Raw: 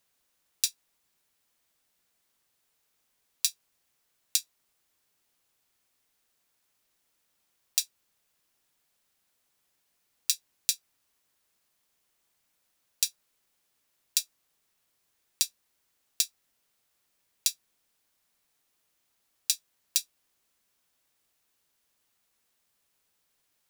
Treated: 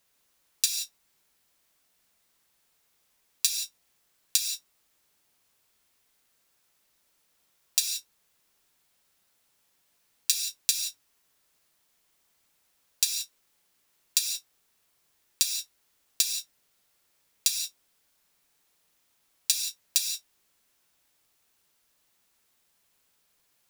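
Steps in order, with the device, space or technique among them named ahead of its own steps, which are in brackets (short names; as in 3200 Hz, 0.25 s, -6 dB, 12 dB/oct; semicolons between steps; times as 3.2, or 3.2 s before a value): parallel distortion (in parallel at -5.5 dB: hard clip -17 dBFS, distortion -7 dB); on the sum: non-linear reverb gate 0.2 s flat, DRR 3 dB; gain -1 dB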